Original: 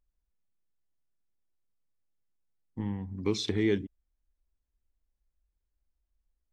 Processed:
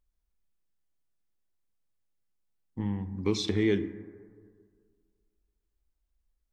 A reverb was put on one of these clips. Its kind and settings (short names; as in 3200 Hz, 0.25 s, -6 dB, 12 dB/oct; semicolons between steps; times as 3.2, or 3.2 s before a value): plate-style reverb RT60 1.9 s, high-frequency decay 0.3×, DRR 11 dB; gain +1 dB